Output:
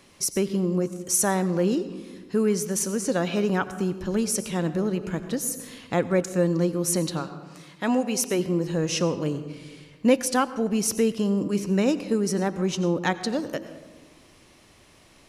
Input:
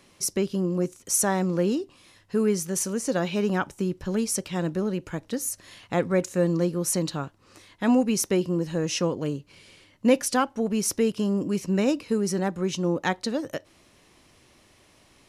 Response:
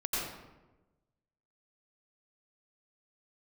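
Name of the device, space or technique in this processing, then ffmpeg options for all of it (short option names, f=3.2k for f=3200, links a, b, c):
ducked reverb: -filter_complex "[0:a]asplit=3[a][b][c];[a]afade=t=out:st=7.19:d=0.02[d];[b]highpass=f=340:p=1,afade=t=in:st=7.19:d=0.02,afade=t=out:st=8.38:d=0.02[e];[c]afade=t=in:st=8.38:d=0.02[f];[d][e][f]amix=inputs=3:normalize=0,asplit=3[g][h][i];[1:a]atrim=start_sample=2205[j];[h][j]afir=irnorm=-1:irlink=0[k];[i]apad=whole_len=674076[l];[k][l]sidechaincompress=threshold=-27dB:ratio=10:attack=16:release=1350,volume=-9.5dB[m];[g][m]amix=inputs=2:normalize=0"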